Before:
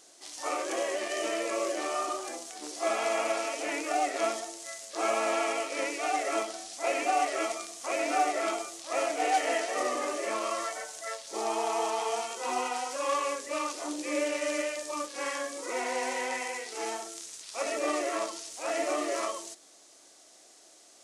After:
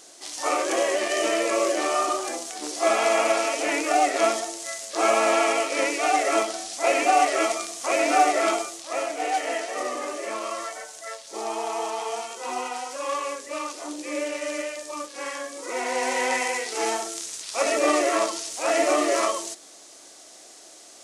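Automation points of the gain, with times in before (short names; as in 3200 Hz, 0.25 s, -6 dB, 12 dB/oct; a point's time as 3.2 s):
8.55 s +8 dB
9.05 s +1 dB
15.5 s +1 dB
16.31 s +9 dB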